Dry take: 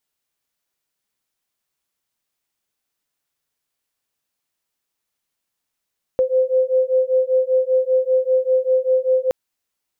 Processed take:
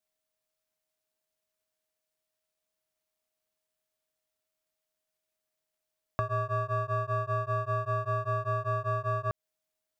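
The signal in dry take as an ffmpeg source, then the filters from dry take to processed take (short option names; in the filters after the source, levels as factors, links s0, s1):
-f lavfi -i "aevalsrc='0.133*(sin(2*PI*514*t)+sin(2*PI*519.1*t))':d=3.12:s=44100"
-af "aeval=exprs='if(lt(val(0),0),0.251*val(0),val(0))':c=same,acompressor=threshold=0.0631:ratio=6,aeval=exprs='val(0)*sin(2*PI*630*n/s)':c=same"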